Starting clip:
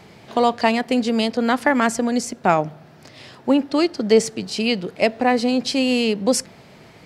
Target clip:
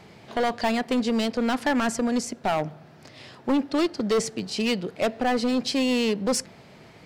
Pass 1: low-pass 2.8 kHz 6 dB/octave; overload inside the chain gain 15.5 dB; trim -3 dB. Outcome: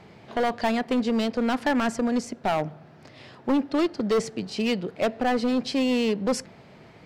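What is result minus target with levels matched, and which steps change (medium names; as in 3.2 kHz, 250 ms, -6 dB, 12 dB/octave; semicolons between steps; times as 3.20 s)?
8 kHz band -6.0 dB
change: low-pass 10 kHz 6 dB/octave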